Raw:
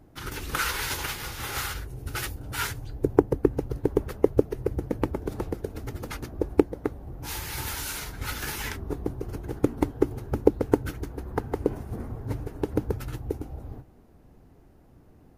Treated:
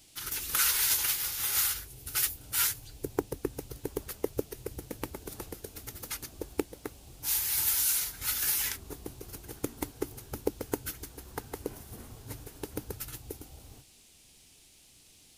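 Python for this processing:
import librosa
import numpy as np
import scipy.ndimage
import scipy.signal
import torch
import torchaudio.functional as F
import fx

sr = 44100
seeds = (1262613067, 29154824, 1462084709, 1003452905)

y = F.preemphasis(torch.from_numpy(x), 0.9).numpy()
y = fx.dmg_noise_band(y, sr, seeds[0], low_hz=2300.0, high_hz=11000.0, level_db=-67.0)
y = y * librosa.db_to_amplitude(7.0)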